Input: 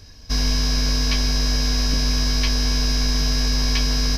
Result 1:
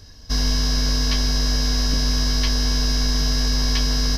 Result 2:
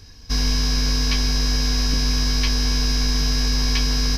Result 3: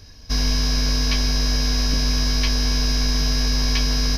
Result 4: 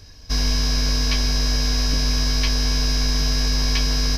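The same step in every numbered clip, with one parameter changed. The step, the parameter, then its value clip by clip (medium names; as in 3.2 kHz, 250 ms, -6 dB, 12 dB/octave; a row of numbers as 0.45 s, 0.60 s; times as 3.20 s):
band-stop, frequency: 2.4 kHz, 610 Hz, 7.7 kHz, 220 Hz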